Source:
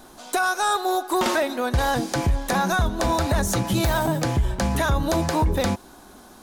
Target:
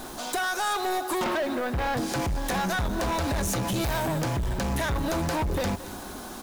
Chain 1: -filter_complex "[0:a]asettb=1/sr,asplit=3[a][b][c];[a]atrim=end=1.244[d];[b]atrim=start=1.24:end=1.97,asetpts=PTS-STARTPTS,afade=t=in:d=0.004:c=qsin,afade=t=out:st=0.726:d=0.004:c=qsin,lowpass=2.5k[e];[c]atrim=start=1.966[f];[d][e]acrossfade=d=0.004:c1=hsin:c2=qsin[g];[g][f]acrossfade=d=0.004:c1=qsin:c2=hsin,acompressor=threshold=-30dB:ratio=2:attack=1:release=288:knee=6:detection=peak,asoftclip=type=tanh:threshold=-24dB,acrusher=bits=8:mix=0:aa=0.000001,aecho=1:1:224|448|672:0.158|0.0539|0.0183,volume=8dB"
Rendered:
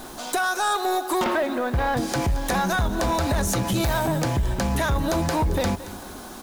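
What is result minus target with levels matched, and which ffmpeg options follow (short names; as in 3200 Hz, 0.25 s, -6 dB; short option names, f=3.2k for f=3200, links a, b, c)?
soft clip: distortion -9 dB
-filter_complex "[0:a]asettb=1/sr,asplit=3[a][b][c];[a]atrim=end=1.244[d];[b]atrim=start=1.24:end=1.97,asetpts=PTS-STARTPTS,afade=t=in:d=0.004:c=qsin,afade=t=out:st=0.726:d=0.004:c=qsin,lowpass=2.5k[e];[c]atrim=start=1.966[f];[d][e]acrossfade=d=0.004:c1=hsin:c2=qsin[g];[g][f]acrossfade=d=0.004:c1=qsin:c2=hsin,acompressor=threshold=-30dB:ratio=2:attack=1:release=288:knee=6:detection=peak,asoftclip=type=tanh:threshold=-32dB,acrusher=bits=8:mix=0:aa=0.000001,aecho=1:1:224|448|672:0.158|0.0539|0.0183,volume=8dB"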